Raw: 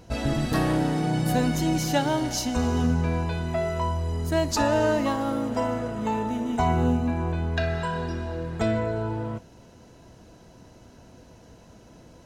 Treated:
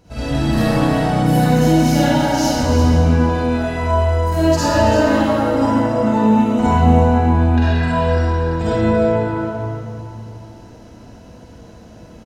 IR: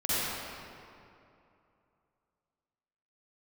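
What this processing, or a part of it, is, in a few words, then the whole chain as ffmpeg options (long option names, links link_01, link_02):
cave: -filter_complex "[0:a]aecho=1:1:336:0.316[link_01];[1:a]atrim=start_sample=2205[link_02];[link_01][link_02]afir=irnorm=-1:irlink=0,volume=-3dB"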